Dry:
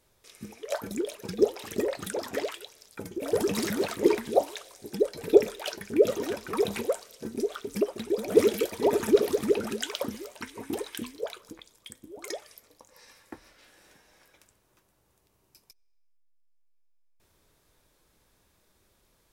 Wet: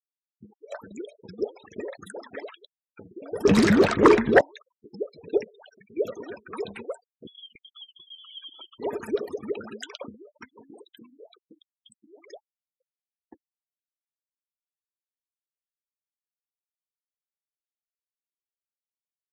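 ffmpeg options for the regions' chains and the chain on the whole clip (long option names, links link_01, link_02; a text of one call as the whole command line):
ffmpeg -i in.wav -filter_complex "[0:a]asettb=1/sr,asplit=3[link_01][link_02][link_03];[link_01]atrim=end=3.454[link_04];[link_02]atrim=start=3.45:end=4.41,asetpts=PTS-STARTPTS,afade=type=in:duration=0.004:curve=qsin,afade=type=out:start_time=0.956:duration=0.004:curve=qsin,lowshelf=frequency=370:gain=10.5,aeval=exprs='0.75*sin(PI/2*2.82*val(0)/0.75)':channel_layout=same,adynamicsmooth=sensitivity=3.5:basefreq=1200[link_05];[link_03]atrim=start=4.406[link_06];[link_04][link_05]acrossfade=duration=0.004:curve1=hsin:curve2=qsin[link_07];[link_07][link_06]acrossfade=duration=0.004:curve1=qsin:curve2=hsin,asettb=1/sr,asplit=3[link_08][link_09][link_10];[link_08]atrim=end=5.444[link_11];[link_09]atrim=start=5.44:end=5.97,asetpts=PTS-STARTPTS,afade=type=in:duration=0.004:curve=qsin,afade=type=out:start_time=0.526:duration=0.004:curve=qsin,bandreject=frequency=320:width=5.6,acompressor=threshold=-40dB:ratio=4:attack=3.2:release=140:knee=1:detection=peak[link_12];[link_10]atrim=start=5.966[link_13];[link_11][link_12]acrossfade=duration=0.004:curve1=hsin:curve2=qsin[link_14];[link_14][link_13]acrossfade=duration=0.004:curve1=qsin:curve2=hsin,asettb=1/sr,asplit=3[link_15][link_16][link_17];[link_15]atrim=end=7.274[link_18];[link_16]atrim=start=7.27:end=8.79,asetpts=PTS-STARTPTS,afade=type=in:duration=0.004:curve=qsin,afade=type=out:start_time=1.516:duration=0.004:curve=qsin,lowpass=frequency=3100:width_type=q:width=0.5098,lowpass=frequency=3100:width_type=q:width=0.6013,lowpass=frequency=3100:width_type=q:width=0.9,lowpass=frequency=3100:width_type=q:width=2.563,afreqshift=-3600,tiltshelf=frequency=850:gain=7,acompressor=threshold=-37dB:ratio=2.5:attack=3.2:release=140:knee=1:detection=peak[link_19];[link_17]atrim=start=8.786[link_20];[link_18][link_19]acrossfade=duration=0.004:curve1=hsin:curve2=qsin[link_21];[link_21][link_20]acrossfade=duration=0.004:curve1=qsin:curve2=hsin,asettb=1/sr,asplit=3[link_22][link_23][link_24];[link_22]atrim=end=10.504[link_25];[link_23]atrim=start=10.5:end=12.33,asetpts=PTS-STARTPTS,afade=type=in:duration=0.004:curve=qsin,afade=type=out:start_time=1.826:duration=0.004:curve=qsin,bandreject=frequency=50:width_type=h:width=6,bandreject=frequency=100:width_type=h:width=6,bandreject=frequency=150:width_type=h:width=6,bandreject=frequency=200:width_type=h:width=6,bandreject=frequency=250:width_type=h:width=6,bandreject=frequency=300:width_type=h:width=6,bandreject=frequency=350:width_type=h:width=6,acompressor=threshold=-36dB:ratio=5:attack=3.2:release=140:knee=1:detection=peak[link_26];[link_24]atrim=start=12.326[link_27];[link_25][link_26]acrossfade=duration=0.004:curve1=hsin:curve2=qsin[link_28];[link_28][link_27]acrossfade=duration=0.004:curve1=qsin:curve2=hsin,afftfilt=real='re*gte(hypot(re,im),0.02)':imag='im*gte(hypot(re,im),0.02)':win_size=1024:overlap=0.75,adynamicequalizer=threshold=0.00631:dfrequency=1600:dqfactor=1.2:tfrequency=1600:tqfactor=1.2:attack=5:release=100:ratio=0.375:range=3:mode=boostabove:tftype=bell,volume=-7dB" out.wav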